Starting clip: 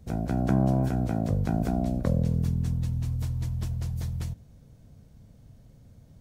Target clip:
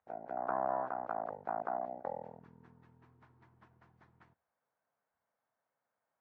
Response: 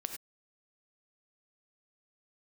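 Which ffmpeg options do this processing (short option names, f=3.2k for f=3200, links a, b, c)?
-af "afwtdn=0.0282,asuperpass=centerf=1200:order=4:qfactor=1.2,volume=6dB"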